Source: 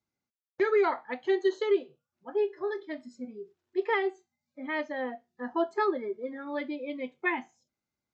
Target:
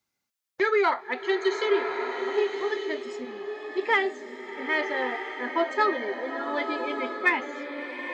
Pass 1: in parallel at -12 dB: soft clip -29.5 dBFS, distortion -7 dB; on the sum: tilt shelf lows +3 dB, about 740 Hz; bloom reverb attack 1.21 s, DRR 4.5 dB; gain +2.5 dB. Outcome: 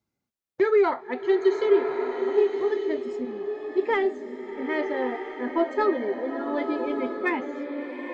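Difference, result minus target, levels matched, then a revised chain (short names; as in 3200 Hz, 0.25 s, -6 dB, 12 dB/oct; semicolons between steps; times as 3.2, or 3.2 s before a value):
1000 Hz band -3.5 dB
in parallel at -12 dB: soft clip -29.5 dBFS, distortion -7 dB; on the sum: tilt shelf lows -5.5 dB, about 740 Hz; bloom reverb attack 1.21 s, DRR 4.5 dB; gain +2.5 dB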